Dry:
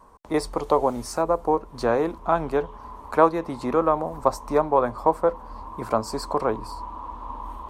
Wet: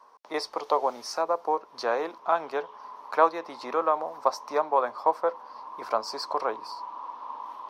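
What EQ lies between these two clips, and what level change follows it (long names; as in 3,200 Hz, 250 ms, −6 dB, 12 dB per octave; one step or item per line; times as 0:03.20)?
high-pass filter 580 Hz 12 dB per octave
high shelf with overshoot 6,500 Hz −6 dB, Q 3
−1.5 dB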